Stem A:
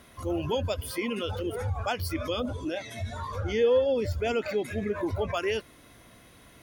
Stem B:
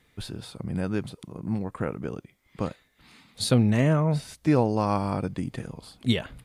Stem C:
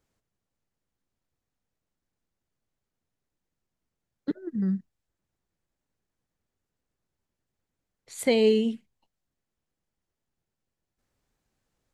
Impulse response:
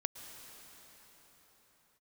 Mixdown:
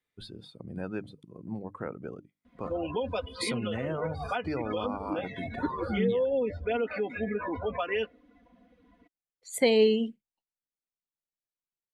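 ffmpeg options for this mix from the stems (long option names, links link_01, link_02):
-filter_complex "[0:a]lowpass=3000,aecho=1:1:4.1:0.71,adelay=2450,volume=1dB[link_01];[1:a]bandreject=frequency=50:width_type=h:width=6,bandreject=frequency=100:width_type=h:width=6,bandreject=frequency=150:width_type=h:width=6,bandreject=frequency=200:width_type=h:width=6,bandreject=frequency=250:width_type=h:width=6,bandreject=frequency=300:width_type=h:width=6,volume=-3.5dB[link_02];[2:a]adelay=1350,volume=1dB[link_03];[link_01][link_02]amix=inputs=2:normalize=0,acrossover=split=420[link_04][link_05];[link_05]acompressor=threshold=-26dB:ratio=2[link_06];[link_04][link_06]amix=inputs=2:normalize=0,alimiter=limit=-19.5dB:level=0:latency=1:release=137,volume=0dB[link_07];[link_03][link_07]amix=inputs=2:normalize=0,afftdn=noise_reduction=18:noise_floor=-44,lowshelf=frequency=190:gain=-9.5"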